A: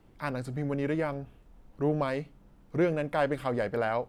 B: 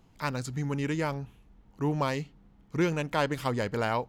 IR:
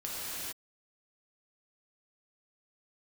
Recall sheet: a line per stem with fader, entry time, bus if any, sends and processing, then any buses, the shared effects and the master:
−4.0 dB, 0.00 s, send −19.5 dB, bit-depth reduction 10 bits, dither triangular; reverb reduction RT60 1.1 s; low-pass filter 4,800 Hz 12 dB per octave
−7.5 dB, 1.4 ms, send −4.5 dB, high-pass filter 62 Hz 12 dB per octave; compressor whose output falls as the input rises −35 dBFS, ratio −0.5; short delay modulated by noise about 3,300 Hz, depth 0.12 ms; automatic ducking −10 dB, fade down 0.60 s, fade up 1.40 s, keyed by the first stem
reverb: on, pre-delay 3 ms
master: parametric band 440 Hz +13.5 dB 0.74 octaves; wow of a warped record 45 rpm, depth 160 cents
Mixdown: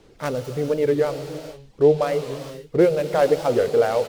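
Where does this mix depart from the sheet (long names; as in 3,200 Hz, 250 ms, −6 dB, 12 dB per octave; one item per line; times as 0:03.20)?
stem A −4.0 dB → +2.5 dB
stem B: missing compressor whose output falls as the input rises −35 dBFS, ratio −0.5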